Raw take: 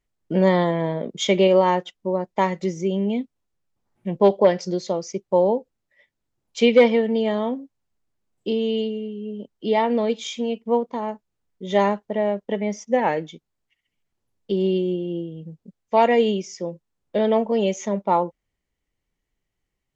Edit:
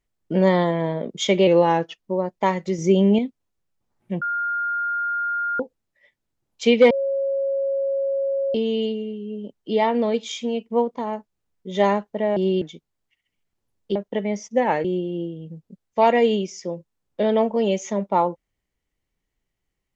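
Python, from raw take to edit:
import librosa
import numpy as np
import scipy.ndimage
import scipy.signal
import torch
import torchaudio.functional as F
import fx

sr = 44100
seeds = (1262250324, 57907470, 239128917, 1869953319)

y = fx.edit(x, sr, fx.speed_span(start_s=1.47, length_s=0.52, speed=0.92),
    fx.clip_gain(start_s=2.74, length_s=0.4, db=6.5),
    fx.bleep(start_s=4.17, length_s=1.38, hz=1410.0, db=-21.5),
    fx.bleep(start_s=6.86, length_s=1.64, hz=548.0, db=-20.0),
    fx.swap(start_s=12.32, length_s=0.89, other_s=14.55, other_length_s=0.25), tone=tone)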